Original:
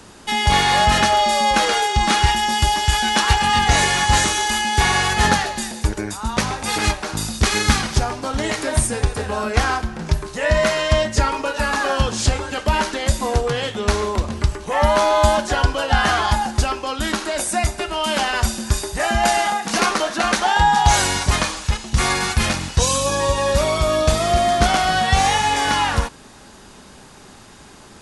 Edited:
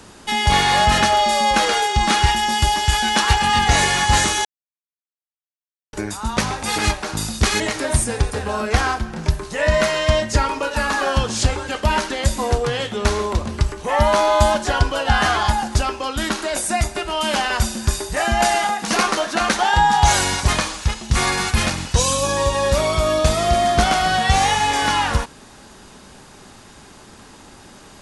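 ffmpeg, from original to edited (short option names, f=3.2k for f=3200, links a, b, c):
-filter_complex "[0:a]asplit=4[a][b][c][d];[a]atrim=end=4.45,asetpts=PTS-STARTPTS,afade=t=out:st=4.446:d=0.004:c=hsin[e];[b]atrim=start=4.45:end=5.93,asetpts=PTS-STARTPTS,volume=0[f];[c]atrim=start=5.93:end=7.602,asetpts=PTS-STARTPTS,afade=t=in:d=0.004:c=hsin[g];[d]atrim=start=8.428[h];[e][f][g]concat=n=3:v=0:a=1[i];[i][h]acrossfade=d=0.004:c1=hsin:c2=hsin"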